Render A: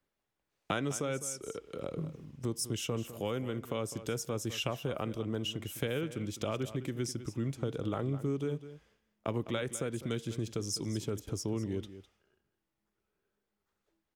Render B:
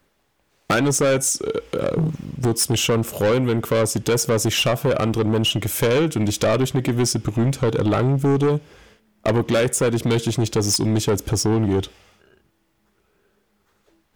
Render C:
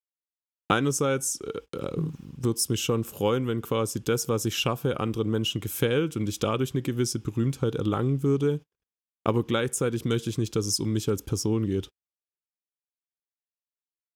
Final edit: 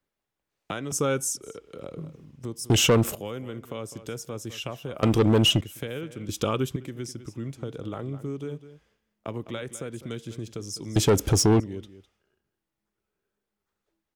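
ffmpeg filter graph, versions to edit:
-filter_complex "[2:a]asplit=2[a][b];[1:a]asplit=3[c][d][e];[0:a]asplit=6[f][g][h][i][j][k];[f]atrim=end=0.922[l];[a]atrim=start=0.918:end=1.372[m];[g]atrim=start=1.368:end=2.702[n];[c]atrim=start=2.698:end=3.152[o];[h]atrim=start=3.148:end=5.032[p];[d]atrim=start=5.028:end=5.612[q];[i]atrim=start=5.608:end=6.292[r];[b]atrim=start=6.288:end=6.762[s];[j]atrim=start=6.758:end=10.962[t];[e]atrim=start=10.958:end=11.602[u];[k]atrim=start=11.598[v];[l][m]acrossfade=d=0.004:c1=hsin:c2=hsin[w];[w][n]acrossfade=d=0.004:c1=hsin:c2=hsin[x];[x][o]acrossfade=d=0.004:c1=hsin:c2=hsin[y];[y][p]acrossfade=d=0.004:c1=hsin:c2=hsin[z];[z][q]acrossfade=d=0.004:c1=hsin:c2=hsin[aa];[aa][r]acrossfade=d=0.004:c1=hsin:c2=hsin[ab];[ab][s]acrossfade=d=0.004:c1=hsin:c2=hsin[ac];[ac][t]acrossfade=d=0.004:c1=hsin:c2=hsin[ad];[ad][u]acrossfade=d=0.004:c1=hsin:c2=hsin[ae];[ae][v]acrossfade=d=0.004:c1=hsin:c2=hsin"

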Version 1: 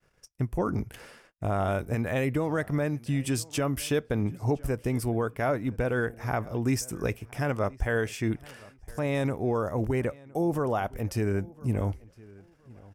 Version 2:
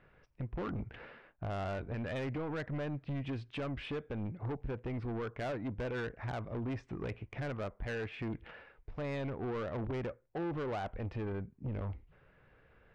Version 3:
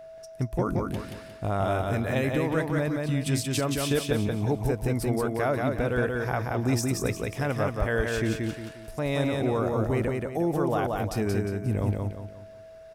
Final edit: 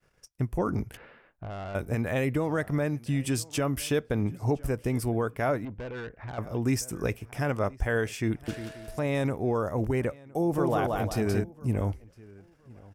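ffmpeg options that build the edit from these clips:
-filter_complex "[1:a]asplit=2[a][b];[2:a]asplit=2[c][d];[0:a]asplit=5[e][f][g][h][i];[e]atrim=end=0.972[j];[a]atrim=start=0.968:end=1.752[k];[f]atrim=start=1.748:end=5.652[l];[b]atrim=start=5.648:end=6.382[m];[g]atrim=start=6.378:end=8.482[n];[c]atrim=start=8.478:end=9.022[o];[h]atrim=start=9.018:end=10.582[p];[d]atrim=start=10.578:end=11.442[q];[i]atrim=start=11.438[r];[j][k]acrossfade=d=0.004:c1=hsin:c2=hsin[s];[s][l]acrossfade=d=0.004:c1=hsin:c2=hsin[t];[t][m]acrossfade=d=0.004:c1=hsin:c2=hsin[u];[u][n]acrossfade=d=0.004:c1=hsin:c2=hsin[v];[v][o]acrossfade=d=0.004:c1=hsin:c2=hsin[w];[w][p]acrossfade=d=0.004:c1=hsin:c2=hsin[x];[x][q]acrossfade=d=0.004:c1=hsin:c2=hsin[y];[y][r]acrossfade=d=0.004:c1=hsin:c2=hsin"

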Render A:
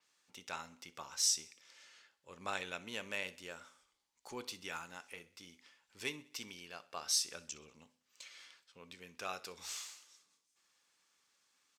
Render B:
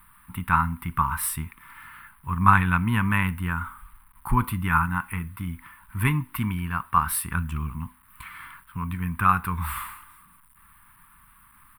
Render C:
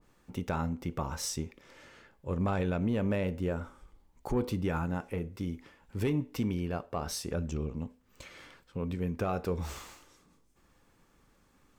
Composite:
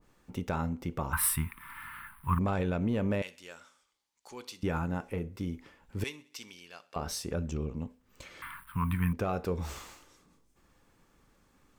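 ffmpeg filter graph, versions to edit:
-filter_complex "[1:a]asplit=2[a][b];[0:a]asplit=2[c][d];[2:a]asplit=5[e][f][g][h][i];[e]atrim=end=1.132[j];[a]atrim=start=1.128:end=2.392[k];[f]atrim=start=2.388:end=3.222[l];[c]atrim=start=3.218:end=4.632[m];[g]atrim=start=4.628:end=6.042[n];[d]atrim=start=6.038:end=6.962[o];[h]atrim=start=6.958:end=8.422[p];[b]atrim=start=8.418:end=9.132[q];[i]atrim=start=9.128[r];[j][k]acrossfade=d=0.004:c1=hsin:c2=hsin[s];[s][l]acrossfade=d=0.004:c1=hsin:c2=hsin[t];[t][m]acrossfade=d=0.004:c1=hsin:c2=hsin[u];[u][n]acrossfade=d=0.004:c1=hsin:c2=hsin[v];[v][o]acrossfade=d=0.004:c1=hsin:c2=hsin[w];[w][p]acrossfade=d=0.004:c1=hsin:c2=hsin[x];[x][q]acrossfade=d=0.004:c1=hsin:c2=hsin[y];[y][r]acrossfade=d=0.004:c1=hsin:c2=hsin"

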